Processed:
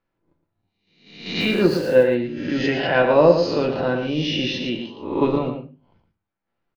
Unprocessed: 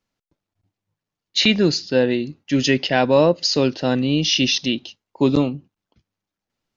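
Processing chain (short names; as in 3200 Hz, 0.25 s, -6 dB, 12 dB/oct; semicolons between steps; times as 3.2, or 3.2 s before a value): spectral swells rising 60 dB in 0.68 s; LPF 1900 Hz 12 dB/oct; low shelf 350 Hz -5.5 dB; in parallel at -3 dB: level quantiser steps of 17 dB; 1.4–2.03 on the sum: sample gate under -34 dBFS; echo 0.114 s -8 dB; on a send at -4 dB: reverb RT60 0.30 s, pre-delay 6 ms; on the sum: gain -3 dB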